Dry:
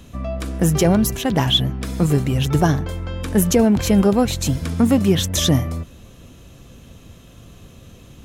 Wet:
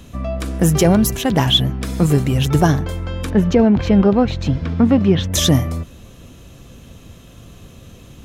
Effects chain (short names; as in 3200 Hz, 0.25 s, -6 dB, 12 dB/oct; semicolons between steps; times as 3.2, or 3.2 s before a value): 3.3–5.32 air absorption 240 m; gain +2.5 dB